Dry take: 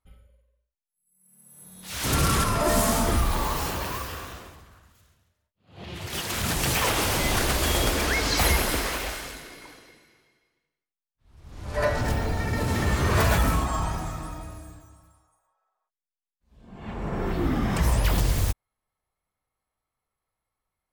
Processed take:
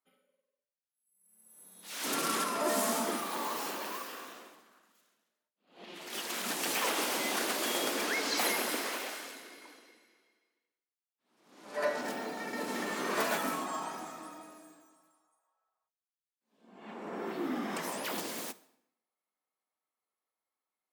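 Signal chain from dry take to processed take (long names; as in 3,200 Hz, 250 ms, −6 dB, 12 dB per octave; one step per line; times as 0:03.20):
Butterworth high-pass 220 Hz 36 dB per octave
convolution reverb RT60 0.75 s, pre-delay 25 ms, DRR 16.5 dB
level −7 dB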